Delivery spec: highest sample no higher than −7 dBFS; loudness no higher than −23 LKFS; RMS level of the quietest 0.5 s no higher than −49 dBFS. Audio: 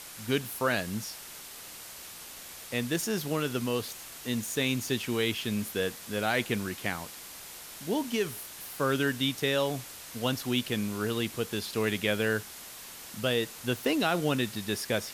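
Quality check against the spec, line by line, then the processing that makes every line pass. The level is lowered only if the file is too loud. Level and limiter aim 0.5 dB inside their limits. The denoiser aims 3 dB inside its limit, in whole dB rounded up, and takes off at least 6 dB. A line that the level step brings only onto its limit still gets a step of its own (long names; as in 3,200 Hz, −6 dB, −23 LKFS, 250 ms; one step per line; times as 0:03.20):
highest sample −13.5 dBFS: in spec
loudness −30.5 LKFS: in spec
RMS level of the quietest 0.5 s −45 dBFS: out of spec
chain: broadband denoise 7 dB, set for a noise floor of −45 dBFS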